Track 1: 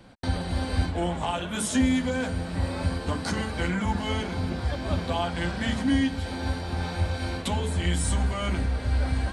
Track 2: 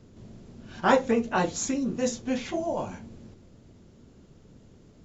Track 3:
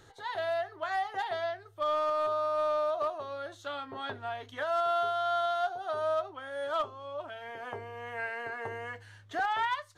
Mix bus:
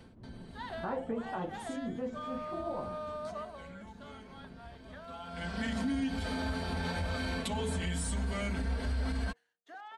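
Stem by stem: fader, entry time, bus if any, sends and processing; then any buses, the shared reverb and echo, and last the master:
-3.0 dB, 0.00 s, no bus, no send, comb 4.5 ms, depth 70%; compressor, threshold -23 dBFS, peak gain reduction 8 dB; auto duck -20 dB, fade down 0.20 s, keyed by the second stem
-0.5 dB, 0.00 s, bus A, no send, LPF 1300 Hz 12 dB/oct; noise-modulated level
3.48 s -4.5 dB -> 3.71 s -14.5 dB, 0.35 s, bus A, no send, steep high-pass 160 Hz 48 dB/oct; expander -46 dBFS; compressor 1.5:1, threshold -35 dBFS, peak gain reduction 3.5 dB
bus A: 0.0 dB, de-hum 66.87 Hz, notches 13; compressor 2:1, threshold -38 dBFS, peak gain reduction 9 dB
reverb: off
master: limiter -25.5 dBFS, peak gain reduction 8 dB

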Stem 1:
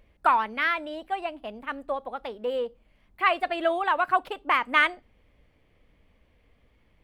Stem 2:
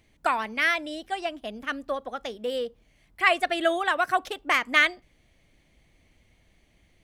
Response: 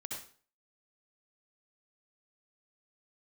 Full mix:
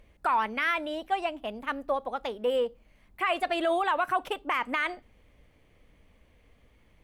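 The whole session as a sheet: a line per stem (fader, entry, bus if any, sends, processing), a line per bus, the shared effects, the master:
+2.0 dB, 0.00 s, no send, dry
-8.0 dB, 0.00 s, polarity flipped, no send, differentiator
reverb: off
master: limiter -17.5 dBFS, peak gain reduction 13 dB

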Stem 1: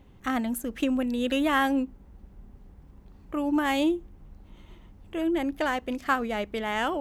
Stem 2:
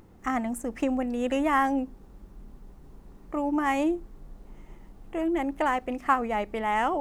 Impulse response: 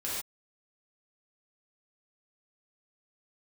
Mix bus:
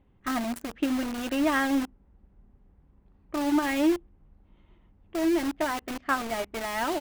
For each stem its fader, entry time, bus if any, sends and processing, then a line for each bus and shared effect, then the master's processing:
-0.5 dB, 0.00 s, no send, LPF 2800 Hz 12 dB/oct; upward expander 1.5:1, over -38 dBFS
-5.0 dB, 3.4 ms, no send, notches 60/120/180/240/300 Hz; limiter -20 dBFS, peak gain reduction 9.5 dB; bit-crush 5-bit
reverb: off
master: dry

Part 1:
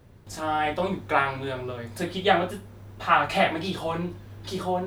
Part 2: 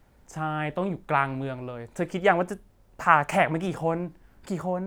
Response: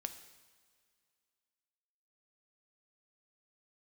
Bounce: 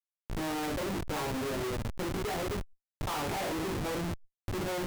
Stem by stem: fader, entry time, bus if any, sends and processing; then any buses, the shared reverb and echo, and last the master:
-1.5 dB, 0.00 s, no send, median filter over 15 samples; bell 350 Hz +13 dB 2 oct; auto duck -10 dB, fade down 0.50 s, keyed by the second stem
-4.0 dB, 0.00 s, no send, high shelf 2700 Hz -8 dB; low-pass opened by the level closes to 310 Hz, open at -19 dBFS; fixed phaser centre 950 Hz, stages 8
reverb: off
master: chorus 0.51 Hz, delay 18 ms, depth 2.1 ms; Schmitt trigger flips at -40.5 dBFS; backwards sustainer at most 61 dB/s

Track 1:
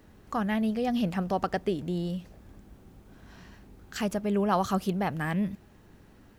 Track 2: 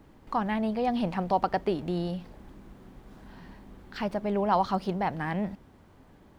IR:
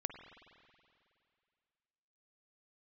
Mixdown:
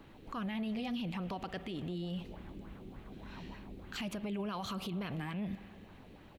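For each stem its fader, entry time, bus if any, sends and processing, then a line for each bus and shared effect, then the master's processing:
-9.5 dB, 0.00 s, send -6.5 dB, band shelf 3000 Hz +10 dB 1.2 oct
-2.5 dB, 0.6 ms, no send, LFO low-pass sine 3.4 Hz 380–3000 Hz; compressor, threshold -32 dBFS, peak gain reduction 16 dB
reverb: on, RT60 2.4 s, pre-delay 46 ms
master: limiter -31 dBFS, peak gain reduction 11.5 dB

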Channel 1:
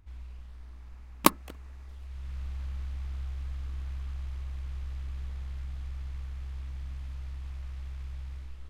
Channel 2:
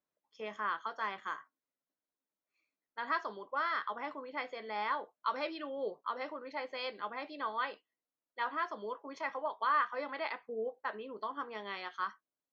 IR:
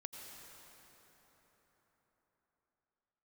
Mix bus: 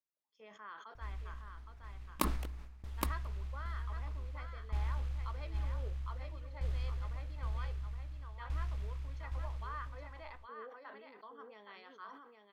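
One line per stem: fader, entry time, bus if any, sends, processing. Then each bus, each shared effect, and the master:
+2.0 dB, 0.95 s, no send, echo send -3.5 dB, dB-ramp tremolo decaying 0.53 Hz, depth 23 dB
-15.5 dB, 0.00 s, send -17 dB, echo send -5.5 dB, dry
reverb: on, RT60 4.6 s, pre-delay 78 ms
echo: echo 0.817 s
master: sustainer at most 45 dB/s

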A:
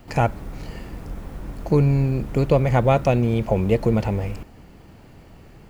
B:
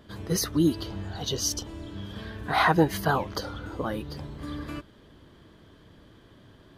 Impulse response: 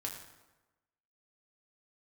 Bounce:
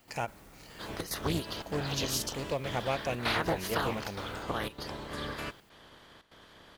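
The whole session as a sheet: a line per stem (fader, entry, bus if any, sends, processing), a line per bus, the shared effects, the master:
-12.0 dB, 0.00 s, no send, tilt +3 dB/oct; ending taper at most 420 dB/s
-2.0 dB, 0.70 s, no send, spectral limiter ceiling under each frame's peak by 19 dB; compressor 6:1, threshold -25 dBFS, peak gain reduction 10 dB; step gate "xxx.xxxxx.xxxxx" 147 bpm -12 dB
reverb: off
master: Doppler distortion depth 0.4 ms

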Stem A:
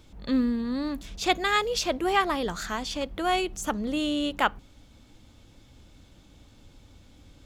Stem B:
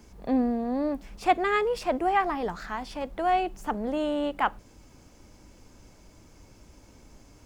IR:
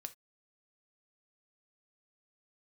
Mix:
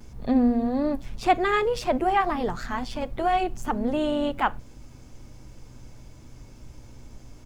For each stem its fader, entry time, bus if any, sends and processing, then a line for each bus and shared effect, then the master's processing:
-5.5 dB, 0.00 s, no send, tone controls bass +9 dB, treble -5 dB; limiter -18 dBFS, peak gain reduction 10 dB; robotiser 123 Hz
-2.0 dB, 4.1 ms, send -2 dB, dry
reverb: on, pre-delay 3 ms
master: low shelf 130 Hz +7 dB

